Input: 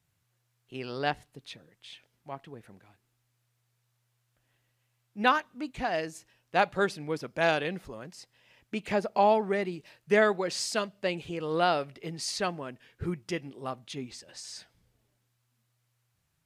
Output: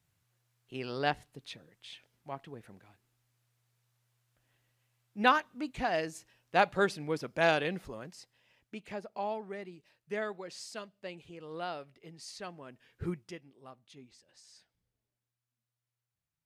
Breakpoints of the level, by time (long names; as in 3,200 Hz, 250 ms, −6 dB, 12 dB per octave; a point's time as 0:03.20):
0:07.97 −1 dB
0:09.00 −13 dB
0:12.45 −13 dB
0:13.09 −2.5 dB
0:13.42 −15.5 dB